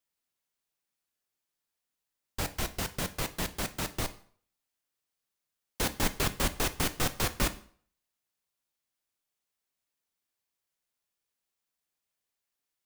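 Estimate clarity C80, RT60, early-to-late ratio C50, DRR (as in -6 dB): 20.5 dB, 0.50 s, 16.5 dB, 11.0 dB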